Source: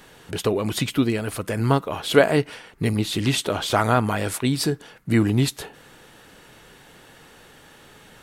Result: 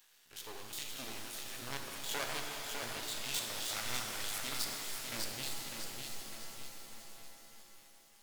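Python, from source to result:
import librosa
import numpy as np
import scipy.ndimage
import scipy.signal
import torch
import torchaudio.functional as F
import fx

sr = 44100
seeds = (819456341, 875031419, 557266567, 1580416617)

p1 = fx.spec_steps(x, sr, hold_ms=50)
p2 = fx.backlash(p1, sr, play_db=-23.0)
p3 = p1 + (p2 * librosa.db_to_amplitude(-4.0))
p4 = fx.peak_eq(p3, sr, hz=10000.0, db=-10.5, octaves=0.69)
p5 = fx.echo_feedback(p4, sr, ms=601, feedback_pct=43, wet_db=-5.0)
p6 = np.maximum(p5, 0.0)
p7 = F.preemphasis(torch.from_numpy(p6), 0.97).numpy()
p8 = fx.rev_shimmer(p7, sr, seeds[0], rt60_s=3.7, semitones=7, shimmer_db=-2, drr_db=3.0)
y = p8 * librosa.db_to_amplitude(-3.0)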